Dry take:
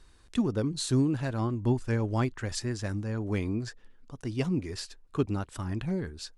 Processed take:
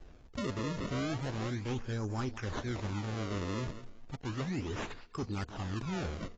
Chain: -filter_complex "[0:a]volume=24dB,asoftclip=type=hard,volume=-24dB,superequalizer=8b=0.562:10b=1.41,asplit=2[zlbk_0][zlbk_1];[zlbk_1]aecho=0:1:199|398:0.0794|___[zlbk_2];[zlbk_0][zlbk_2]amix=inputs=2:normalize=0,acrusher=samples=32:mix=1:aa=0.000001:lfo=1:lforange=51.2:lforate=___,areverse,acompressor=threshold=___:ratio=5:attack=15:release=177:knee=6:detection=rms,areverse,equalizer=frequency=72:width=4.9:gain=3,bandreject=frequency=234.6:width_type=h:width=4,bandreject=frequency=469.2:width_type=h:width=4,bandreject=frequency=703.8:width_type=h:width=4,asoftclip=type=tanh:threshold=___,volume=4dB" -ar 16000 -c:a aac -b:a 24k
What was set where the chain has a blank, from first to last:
0.0127, 0.34, -37dB, -31dB